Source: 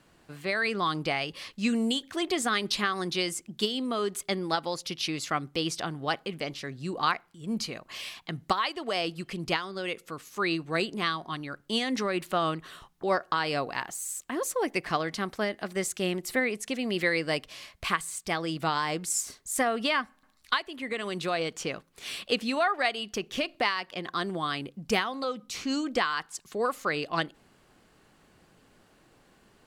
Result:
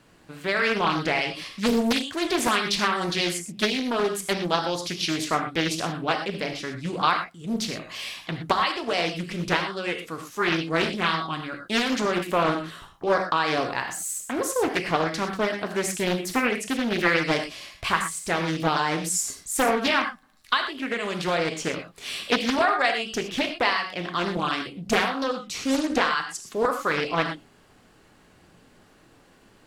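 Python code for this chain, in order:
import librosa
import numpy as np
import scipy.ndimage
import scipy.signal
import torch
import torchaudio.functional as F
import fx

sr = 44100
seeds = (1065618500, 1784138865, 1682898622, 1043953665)

y = fx.rev_gated(x, sr, seeds[0], gate_ms=140, shape='flat', drr_db=4.0)
y = fx.doppler_dist(y, sr, depth_ms=0.87)
y = F.gain(torch.from_numpy(y), 3.5).numpy()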